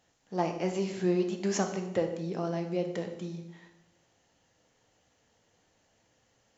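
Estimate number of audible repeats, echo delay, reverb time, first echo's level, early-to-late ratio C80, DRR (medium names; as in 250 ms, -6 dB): no echo, no echo, 0.85 s, no echo, 10.5 dB, 4.0 dB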